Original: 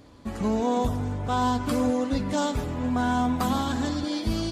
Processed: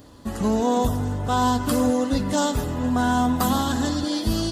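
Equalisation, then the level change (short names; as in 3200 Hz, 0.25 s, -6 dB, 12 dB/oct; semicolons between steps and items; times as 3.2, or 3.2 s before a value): high shelf 9000 Hz +12 dB; notch 2300 Hz, Q 6.6; +3.5 dB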